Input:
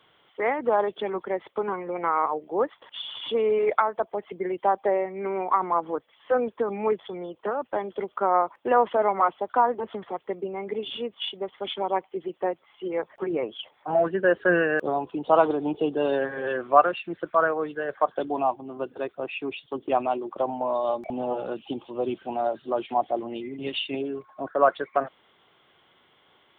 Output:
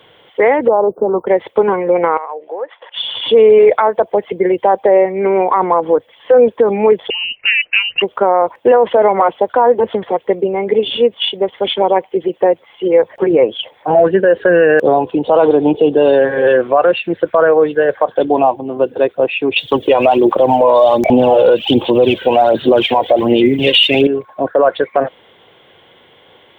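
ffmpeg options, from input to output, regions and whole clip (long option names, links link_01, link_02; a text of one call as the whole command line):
ffmpeg -i in.wav -filter_complex "[0:a]asettb=1/sr,asplit=3[link_01][link_02][link_03];[link_01]atrim=end=0.684[link_04];[link_02]atrim=start=0.68:end=1.27,asetpts=PTS-STARTPTS,afade=type=in:duration=0.004:curve=qsin,afade=type=out:start_time=0.586:duration=0.004:curve=qsin,acompressor=threshold=-25dB:ratio=2.5:attack=3.2:release=140:knee=1:detection=peak,asuperstop=centerf=3400:order=20:qfactor=0.52[link_05];[link_03]atrim=start=1.266[link_06];[link_04][link_05]acrossfade=duration=0.004:curve1=hsin:curve2=qsin[link_07];[link_07][link_06]acrossfade=duration=0.004:curve1=qsin:curve2=hsin,asettb=1/sr,asplit=3[link_08][link_09][link_10];[link_08]atrim=end=2.174[link_11];[link_09]atrim=start=2.17:end=2.97,asetpts=PTS-STARTPTS,afade=type=in:duration=0.004:curve=qsin,afade=type=out:start_time=0.796:duration=0.004:curve=qsin,acompressor=threshold=-33dB:ratio=6:attack=3.2:release=140:knee=1:detection=peak,acrossover=split=480 3300:gain=0.0631 1 0.126[link_12][link_13][link_14];[link_12][link_13][link_14]amix=inputs=3:normalize=0[link_15];[link_10]atrim=start=2.966[link_16];[link_11][link_15]acrossfade=duration=0.004:curve1=hsin:curve2=qsin[link_17];[link_17][link_16]acrossfade=duration=0.004:curve1=qsin:curve2=hsin,asettb=1/sr,asplit=3[link_18][link_19][link_20];[link_18]atrim=end=7.104[link_21];[link_19]atrim=start=7.1:end=8.02,asetpts=PTS-STARTPTS,afade=type=in:duration=0.004:curve=qsin,afade=type=out:start_time=0.916:duration=0.004:curve=qsin,highpass=100,lowpass=frequency=2700:width_type=q:width=0.5098,lowpass=frequency=2700:width_type=q:width=0.6013,lowpass=frequency=2700:width_type=q:width=0.9,lowpass=frequency=2700:width_type=q:width=2.563,afreqshift=-3200[link_22];[link_20]atrim=start=8.016[link_23];[link_21][link_22]acrossfade=duration=0.004:curve1=hsin:curve2=qsin[link_24];[link_24][link_23]acrossfade=duration=0.004:curve1=qsin:curve2=hsin,asettb=1/sr,asplit=3[link_25][link_26][link_27];[link_25]atrim=end=19.564[link_28];[link_26]atrim=start=19.56:end=24.07,asetpts=PTS-STARTPTS,afade=type=in:duration=0.004:curve=qsin,afade=type=out:start_time=4.506:duration=0.004:curve=qsin,highshelf=frequency=2500:gain=11.5,acontrast=35,aphaser=in_gain=1:out_gain=1:delay=2.1:decay=0.52:speed=1.3:type=sinusoidal[link_29];[link_27]atrim=start=24.066[link_30];[link_28][link_29]acrossfade=duration=0.004:curve1=hsin:curve2=qsin[link_31];[link_31][link_30]acrossfade=duration=0.004:curve1=qsin:curve2=hsin,equalizer=frequency=100:width_type=o:width=0.33:gain=5,equalizer=frequency=500:width_type=o:width=0.33:gain=8,equalizer=frequency=1250:width_type=o:width=0.33:gain=-8,alimiter=level_in=15.5dB:limit=-1dB:release=50:level=0:latency=1,volume=-1dB" out.wav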